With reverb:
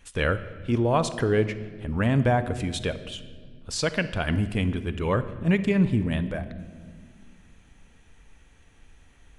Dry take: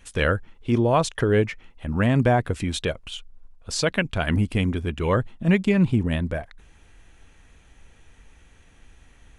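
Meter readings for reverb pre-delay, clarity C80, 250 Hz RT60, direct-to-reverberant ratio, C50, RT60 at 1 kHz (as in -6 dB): 7 ms, 14.5 dB, 3.1 s, 11.5 dB, 13.0 dB, 1.4 s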